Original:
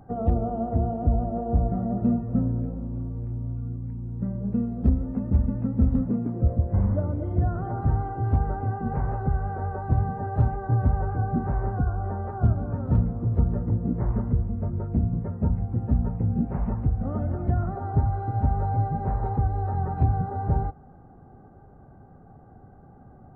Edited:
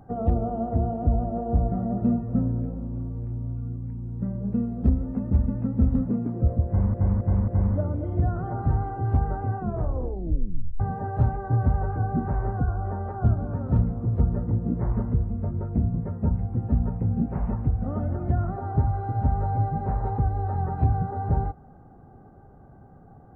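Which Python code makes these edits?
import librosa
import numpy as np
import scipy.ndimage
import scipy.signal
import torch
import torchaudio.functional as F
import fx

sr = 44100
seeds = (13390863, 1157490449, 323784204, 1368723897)

y = fx.edit(x, sr, fx.repeat(start_s=6.67, length_s=0.27, count=4),
    fx.tape_stop(start_s=8.75, length_s=1.24), tone=tone)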